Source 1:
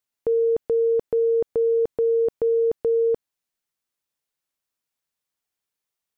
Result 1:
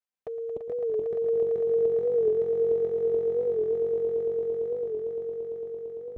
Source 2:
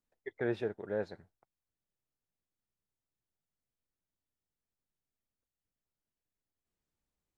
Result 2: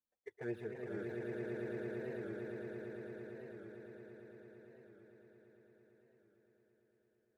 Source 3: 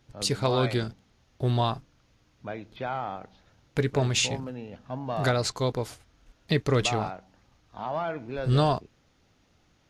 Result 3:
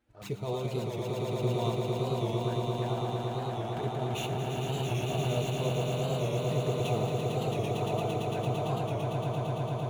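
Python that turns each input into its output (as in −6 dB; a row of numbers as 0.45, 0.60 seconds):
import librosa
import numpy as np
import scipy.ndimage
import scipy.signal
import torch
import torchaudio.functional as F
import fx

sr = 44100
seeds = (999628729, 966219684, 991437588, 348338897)

p1 = scipy.ndimage.median_filter(x, 9, mode='constant')
p2 = fx.highpass(p1, sr, hz=89.0, slope=6)
p3 = fx.notch(p2, sr, hz=3300.0, q=24.0)
p4 = fx.over_compress(p3, sr, threshold_db=-25.0, ratio=-0.5)
p5 = fx.env_flanger(p4, sr, rest_ms=3.8, full_db=-27.0)
p6 = fx.notch_comb(p5, sr, f0_hz=270.0)
p7 = p6 + fx.echo_swell(p6, sr, ms=113, loudest=8, wet_db=-4.5, dry=0)
p8 = fx.record_warp(p7, sr, rpm=45.0, depth_cents=100.0)
y = p8 * librosa.db_to_amplitude(-5.0)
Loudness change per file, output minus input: −5.5, −8.0, −3.5 LU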